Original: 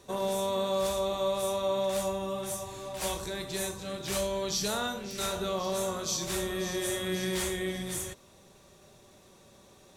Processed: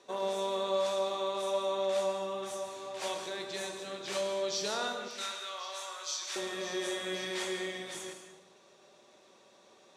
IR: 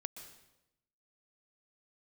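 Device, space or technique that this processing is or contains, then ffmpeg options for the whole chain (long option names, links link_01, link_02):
supermarket ceiling speaker: -filter_complex "[0:a]asettb=1/sr,asplit=3[link_01][link_02][link_03];[link_01]atrim=end=5.084[link_04];[link_02]atrim=start=5.08:end=6.36,asetpts=PTS-STARTPTS,afade=type=in:duration=0.004:curve=qsin,afade=type=out:start_time=1.276:duration=0.004:curve=qsin,highpass=1200[link_05];[link_03]atrim=start=6.356[link_06];[link_04][link_05]acrossfade=duration=0.004:curve1=hsin:curve2=qsin[link_07];[link_07][link_06]acrossfade=duration=0.004:curve1=qsin:curve2=hsin,highpass=350,lowpass=5900[link_08];[1:a]atrim=start_sample=2205[link_09];[link_08][link_09]afir=irnorm=-1:irlink=0,volume=1.5dB"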